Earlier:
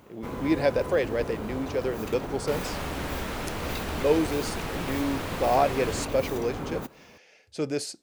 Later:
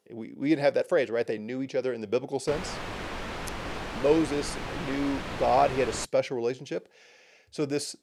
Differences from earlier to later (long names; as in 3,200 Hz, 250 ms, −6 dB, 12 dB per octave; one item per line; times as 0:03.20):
first sound: muted
second sound: add high-frequency loss of the air 64 metres